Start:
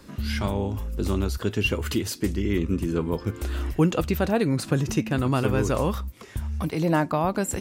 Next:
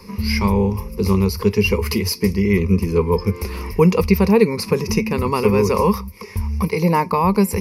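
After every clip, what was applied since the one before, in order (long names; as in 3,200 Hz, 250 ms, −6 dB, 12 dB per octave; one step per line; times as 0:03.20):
EQ curve with evenly spaced ripples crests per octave 0.85, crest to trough 18 dB
level +4 dB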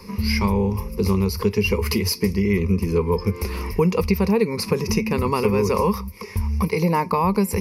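downward compressor 2.5 to 1, threshold −17 dBFS, peak gain reduction 6.5 dB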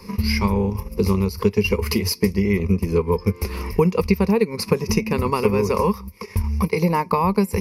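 transient designer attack +3 dB, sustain −7 dB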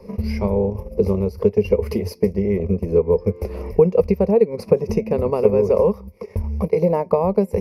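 drawn EQ curve 320 Hz 0 dB, 630 Hz +14 dB, 1,000 Hz −7 dB, 2,000 Hz −9 dB, 4,000 Hz −13 dB
level −2 dB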